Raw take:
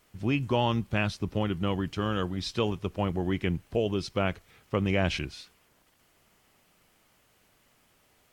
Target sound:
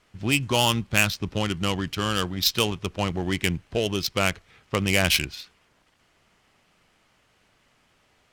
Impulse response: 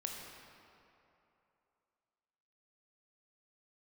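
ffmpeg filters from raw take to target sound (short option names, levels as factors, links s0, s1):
-af "bass=f=250:g=2,treble=f=4000:g=3,adynamicsmooth=sensitivity=5:basefreq=2000,crystalizer=i=9:c=0"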